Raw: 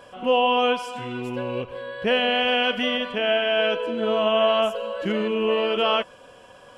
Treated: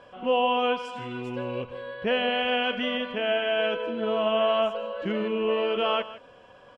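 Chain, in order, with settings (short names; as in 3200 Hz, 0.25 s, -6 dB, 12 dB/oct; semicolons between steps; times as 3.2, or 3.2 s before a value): Bessel low-pass 3600 Hz, order 2, from 0.84 s 6200 Hz, from 1.93 s 3400 Hz; echo 0.161 s -16 dB; gain -3.5 dB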